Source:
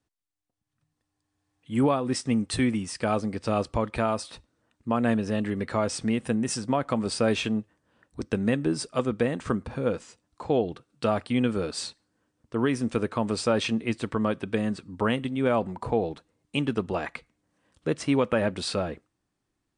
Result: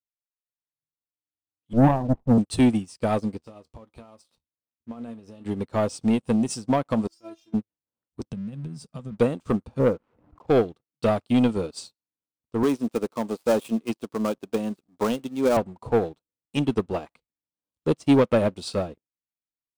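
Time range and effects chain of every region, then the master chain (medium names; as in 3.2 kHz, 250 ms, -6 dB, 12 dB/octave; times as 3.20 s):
1.73–2.38 s: comb filter that takes the minimum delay 1.1 ms + low-pass 1 kHz 24 dB/octave + bass shelf 300 Hz +2.5 dB
3.37–5.46 s: compression 8:1, threshold -26 dBFS + feedback comb 78 Hz, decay 0.16 s, mix 70%
7.07–7.54 s: de-esser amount 30% + peaking EQ 5.8 kHz +11 dB 0.41 oct + inharmonic resonator 330 Hz, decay 0.22 s, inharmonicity 0.002
8.30–9.18 s: resonant low shelf 250 Hz +8.5 dB, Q 3 + compression 16:1, threshold -29 dBFS
9.79–10.47 s: steep low-pass 2 kHz + swell ahead of each attack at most 32 dB/s
12.63–15.57 s: dead-time distortion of 0.1 ms + high-pass 200 Hz
whole clip: peaking EQ 1.8 kHz -13.5 dB 0.66 oct; waveshaping leveller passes 2; upward expansion 2.5:1, over -35 dBFS; trim +3 dB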